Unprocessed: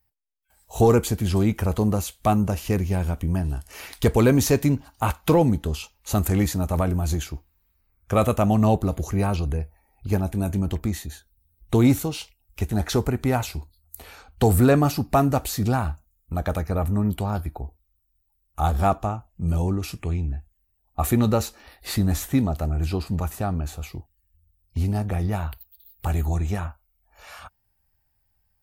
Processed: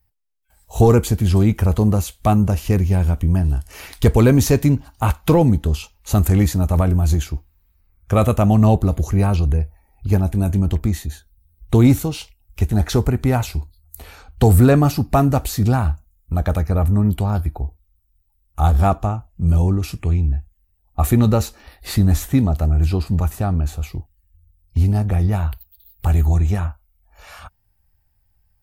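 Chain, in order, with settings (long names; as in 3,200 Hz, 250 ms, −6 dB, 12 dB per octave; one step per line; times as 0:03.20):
low-shelf EQ 140 Hz +9 dB
level +2 dB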